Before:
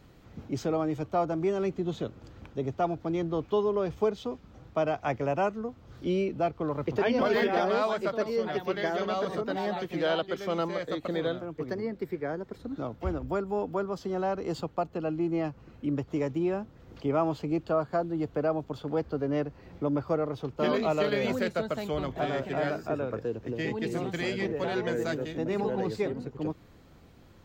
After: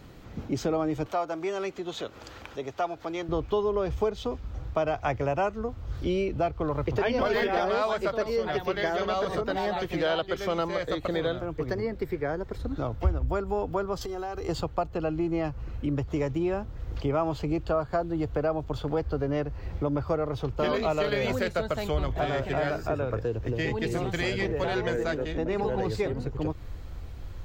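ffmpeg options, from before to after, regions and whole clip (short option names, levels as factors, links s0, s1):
-filter_complex "[0:a]asettb=1/sr,asplit=3[s0][s1][s2];[s0]atrim=end=1.064[s3];[s1]atrim=start=1.06:end=3.29,asetpts=PTS-STARTPTS,afade=t=in:d=0.004:c=qsin,afade=t=out:st=2.226:d=0.004:c=qsin,acompressor=mode=upward:threshold=0.0251:ratio=2.5:attack=3.2:release=140:knee=2.83:detection=peak,highpass=f=900:p=1[s4];[s2]atrim=start=3.286[s5];[s3][s4]acrossfade=d=0.004:c1=hsin:c2=qsin[s6];[s6][s5]acrossfade=d=0.004:c1=qsin:c2=hsin,asettb=1/sr,asplit=3[s7][s8][s9];[s7]atrim=end=14.014[s10];[s8]atrim=start=14.01:end=14.49,asetpts=PTS-STARTPTS,afade=t=in:d=0.004:c=qsin,afade=t=out:st=0.476:d=0.004:c=qsin,aemphasis=mode=production:type=50kf,aecho=1:1:2.5:0.5,atrim=end_sample=21168,acompressor=threshold=0.0141:ratio=6:attack=3.2:release=140:knee=1:detection=peak[s11];[s9]atrim=start=14.486[s12];[s10][s11]acrossfade=d=0.004:c1=hsin:c2=qsin[s13];[s13][s12]acrossfade=d=0.004:c1=qsin:c2=hsin,asettb=1/sr,asplit=3[s14][s15][s16];[s14]atrim=end=24.964[s17];[s15]atrim=start=24.96:end=25.62,asetpts=PTS-STARTPTS,afade=t=in:d=0.004:c=qsin,afade=t=out:st=0.656:d=0.004:c=qsin,lowpass=f=3700:p=1,equalizer=f=120:t=o:w=0.3:g=-14.5[s18];[s16]atrim=start=25.616[s19];[s17][s18]acrossfade=d=0.004:c1=hsin:c2=qsin[s20];[s20][s19]acrossfade=d=0.004:c1=qsin:c2=hsin,asubboost=boost=10:cutoff=63,acompressor=threshold=0.02:ratio=2,volume=2.24"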